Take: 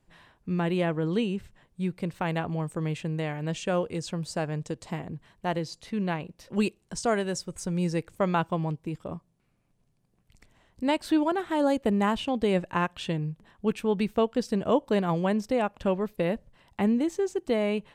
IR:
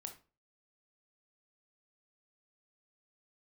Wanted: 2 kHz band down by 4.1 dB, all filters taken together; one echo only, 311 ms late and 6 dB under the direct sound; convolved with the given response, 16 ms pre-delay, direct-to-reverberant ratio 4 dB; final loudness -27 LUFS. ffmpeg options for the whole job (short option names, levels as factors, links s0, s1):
-filter_complex "[0:a]equalizer=f=2000:t=o:g=-5.5,aecho=1:1:311:0.501,asplit=2[s0][s1];[1:a]atrim=start_sample=2205,adelay=16[s2];[s1][s2]afir=irnorm=-1:irlink=0,volume=1.06[s3];[s0][s3]amix=inputs=2:normalize=0"